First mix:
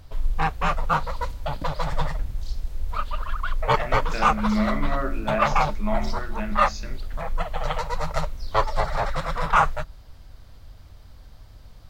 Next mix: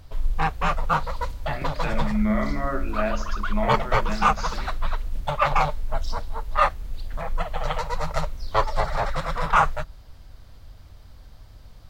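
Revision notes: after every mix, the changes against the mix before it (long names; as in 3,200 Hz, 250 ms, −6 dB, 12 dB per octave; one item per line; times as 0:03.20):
speech: entry −2.30 s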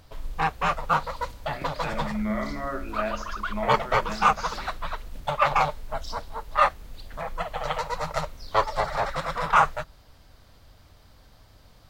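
speech −3.0 dB
master: add low-shelf EQ 110 Hz −11.5 dB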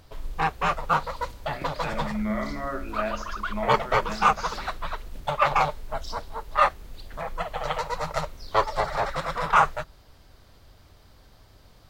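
background: add parametric band 380 Hz +6 dB 0.27 octaves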